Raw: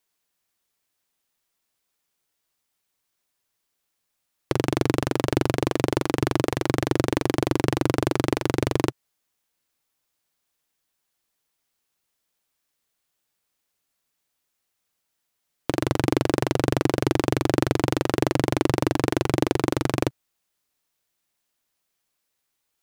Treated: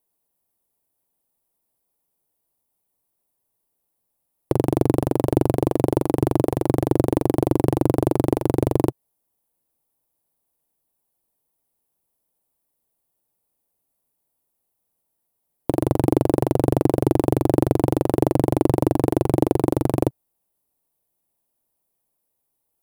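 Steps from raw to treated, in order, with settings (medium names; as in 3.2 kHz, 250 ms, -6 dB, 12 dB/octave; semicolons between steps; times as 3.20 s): high-order bell 3 kHz -14.5 dB 2.9 oct; trim +4 dB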